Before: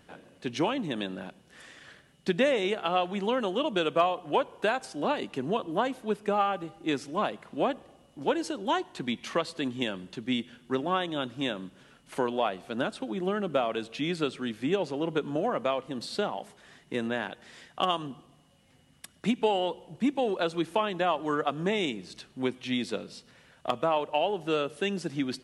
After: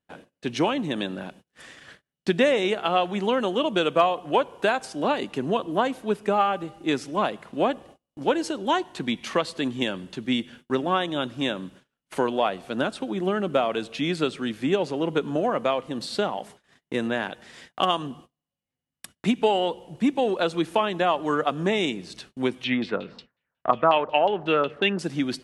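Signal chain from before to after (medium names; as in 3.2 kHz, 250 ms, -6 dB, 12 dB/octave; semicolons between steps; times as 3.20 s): gate -51 dBFS, range -32 dB; 22.64–24.99 s: LFO low-pass saw down 5.5 Hz 950–4000 Hz; trim +4.5 dB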